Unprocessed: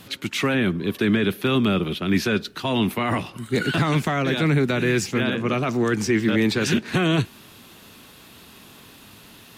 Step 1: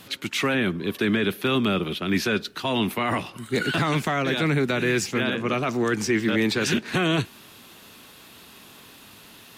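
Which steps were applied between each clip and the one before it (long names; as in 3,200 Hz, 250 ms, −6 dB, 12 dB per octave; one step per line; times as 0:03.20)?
low-shelf EQ 250 Hz −6 dB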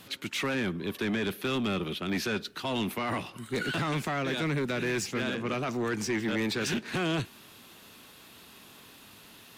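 soft clipping −19.5 dBFS, distortion −15 dB
level −4.5 dB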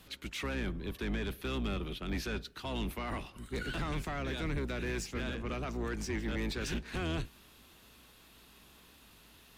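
sub-octave generator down 2 octaves, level +2 dB
level −7.5 dB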